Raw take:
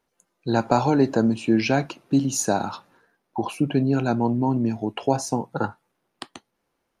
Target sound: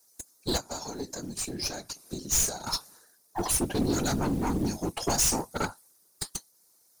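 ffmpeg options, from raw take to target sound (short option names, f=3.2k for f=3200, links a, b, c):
-filter_complex "[0:a]highpass=f=180:p=1,asettb=1/sr,asplit=3[a][b][c];[a]atrim=end=0.574[d];[b]atrim=start=0.57:end=2.67,asetpts=PTS-STARTPTS,afade=t=in:d=0.004:c=qsin,afade=t=out:st=2.096:d=0.004:c=qsin,acompressor=threshold=-35dB:ratio=4[e];[c]atrim=start=2.666[f];[d][e]acrossfade=d=0.004:c1=hsin:c2=qsin[g];[g][f]acrossfade=d=0.004:c1=qsin:c2=hsin,aexciter=amount=12.7:drive=6.4:freq=4.4k,aeval=exprs='(tanh(14.1*val(0)+0.6)-tanh(0.6))/14.1':c=same,acrusher=bits=6:mode=log:mix=0:aa=0.000001,afftfilt=real='hypot(re,im)*cos(2*PI*random(0))':imag='hypot(re,im)*sin(2*PI*random(1))':win_size=512:overlap=0.75,volume=6.5dB"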